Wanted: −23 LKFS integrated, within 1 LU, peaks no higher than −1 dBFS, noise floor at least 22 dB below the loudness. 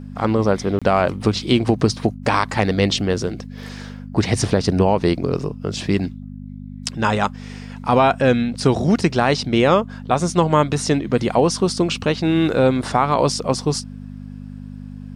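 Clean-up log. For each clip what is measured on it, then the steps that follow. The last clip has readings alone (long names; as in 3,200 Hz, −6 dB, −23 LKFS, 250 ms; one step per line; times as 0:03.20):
number of dropouts 1; longest dropout 26 ms; mains hum 50 Hz; hum harmonics up to 250 Hz; level of the hum −31 dBFS; integrated loudness −19.0 LKFS; sample peak −3.0 dBFS; target loudness −23.0 LKFS
→ repair the gap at 0:00.79, 26 ms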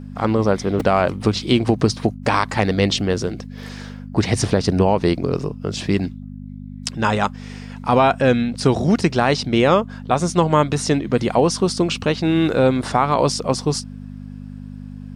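number of dropouts 0; mains hum 50 Hz; hum harmonics up to 250 Hz; level of the hum −31 dBFS
→ hum removal 50 Hz, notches 5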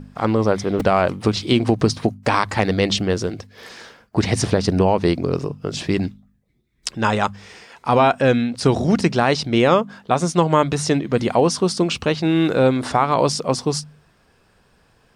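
mains hum none found; integrated loudness −19.5 LKFS; sample peak −3.0 dBFS; target loudness −23.0 LKFS
→ level −3.5 dB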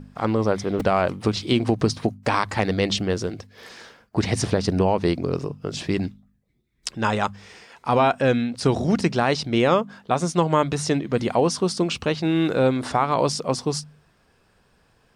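integrated loudness −23.0 LKFS; sample peak −6.5 dBFS; background noise floor −62 dBFS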